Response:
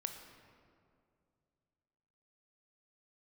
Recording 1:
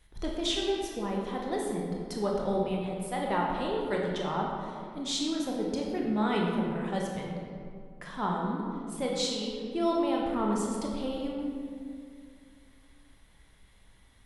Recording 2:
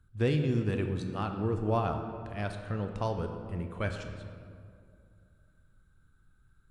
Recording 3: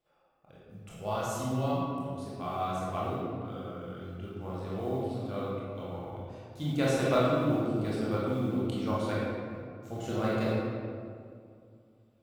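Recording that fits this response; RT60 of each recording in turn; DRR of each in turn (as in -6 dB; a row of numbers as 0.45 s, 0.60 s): 2; 2.3 s, 2.3 s, 2.3 s; -2.0 dB, 5.0 dB, -7.5 dB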